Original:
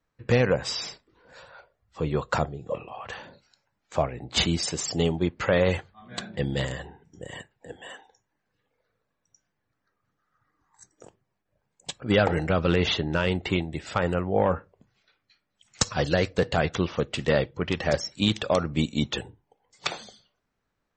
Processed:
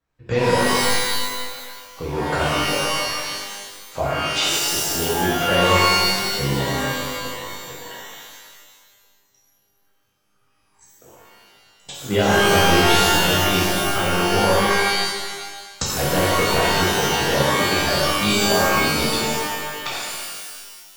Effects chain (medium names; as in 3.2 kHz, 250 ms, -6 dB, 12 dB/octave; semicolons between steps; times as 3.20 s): 4.25–4.68 s: steep high-pass 350 Hz 72 dB/octave; pitch-shifted reverb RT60 1.5 s, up +12 st, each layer -2 dB, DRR -6.5 dB; trim -4 dB